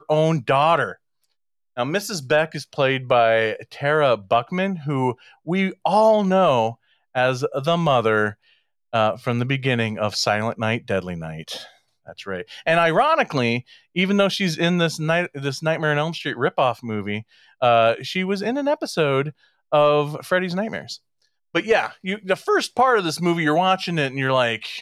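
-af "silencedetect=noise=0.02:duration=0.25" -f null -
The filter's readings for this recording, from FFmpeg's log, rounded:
silence_start: 0.93
silence_end: 1.77 | silence_duration: 0.84
silence_start: 5.13
silence_end: 5.47 | silence_duration: 0.34
silence_start: 6.73
silence_end: 7.15 | silence_duration: 0.43
silence_start: 8.32
silence_end: 8.93 | silence_duration: 0.61
silence_start: 11.66
silence_end: 12.09 | silence_duration: 0.43
silence_start: 13.60
silence_end: 13.96 | silence_duration: 0.36
silence_start: 17.21
silence_end: 17.62 | silence_duration: 0.40
silence_start: 19.30
silence_end: 19.72 | silence_duration: 0.42
silence_start: 20.96
silence_end: 21.55 | silence_duration: 0.59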